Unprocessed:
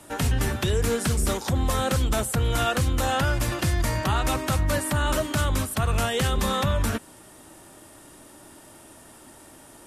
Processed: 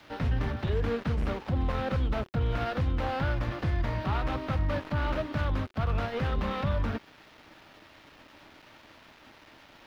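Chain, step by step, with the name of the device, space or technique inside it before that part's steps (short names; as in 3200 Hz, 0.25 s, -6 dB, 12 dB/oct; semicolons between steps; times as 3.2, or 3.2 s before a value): budget class-D amplifier (switching dead time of 0.21 ms; switching spikes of -22 dBFS); air absorption 310 m; notch 370 Hz, Q 12; gain -4 dB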